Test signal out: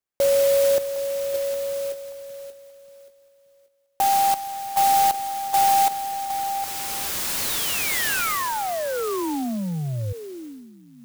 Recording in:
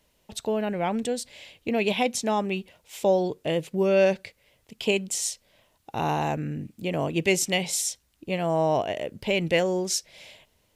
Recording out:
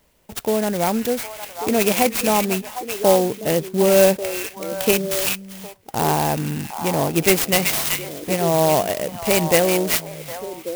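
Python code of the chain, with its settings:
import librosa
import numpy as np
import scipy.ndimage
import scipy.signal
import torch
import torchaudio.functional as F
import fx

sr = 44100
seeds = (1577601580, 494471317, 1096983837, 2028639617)

y = fx.lowpass(x, sr, hz=3700.0, slope=6)
y = fx.high_shelf(y, sr, hz=2200.0, db=6.0)
y = fx.echo_stepped(y, sr, ms=380, hz=2700.0, octaves=-1.4, feedback_pct=70, wet_db=-3.0)
y = fx.clock_jitter(y, sr, seeds[0], jitter_ms=0.072)
y = F.gain(torch.from_numpy(y), 6.0).numpy()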